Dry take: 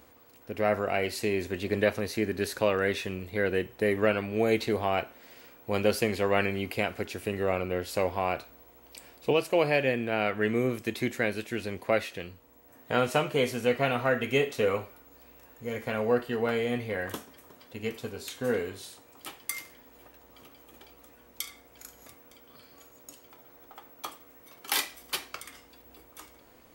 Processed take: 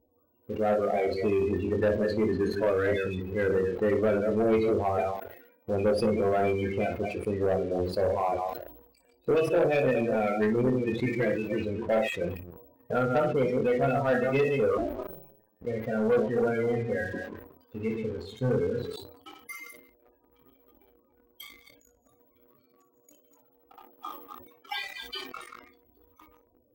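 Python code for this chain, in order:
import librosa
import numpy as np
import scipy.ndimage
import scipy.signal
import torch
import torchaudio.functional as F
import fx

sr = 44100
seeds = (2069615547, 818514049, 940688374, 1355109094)

y = fx.reverse_delay(x, sr, ms=139, wet_db=-5)
y = fx.comb(y, sr, ms=6.1, depth=0.47, at=(11.05, 11.6))
y = fx.peak_eq(y, sr, hz=130.0, db=12.0, octaves=0.25, at=(18.29, 18.85))
y = fx.spec_topn(y, sr, count=16)
y = fx.high_shelf(y, sr, hz=4300.0, db=-8.5)
y = fx.room_early_taps(y, sr, ms=(23, 59), db=(-6.0, -11.0))
y = fx.ring_mod(y, sr, carrier_hz=fx.line((14.77, 190.0), (15.65, 39.0)), at=(14.77, 15.65), fade=0.02)
y = fx.leveller(y, sr, passes=2)
y = fx.sustainer(y, sr, db_per_s=75.0)
y = y * librosa.db_to_amplitude(-5.5)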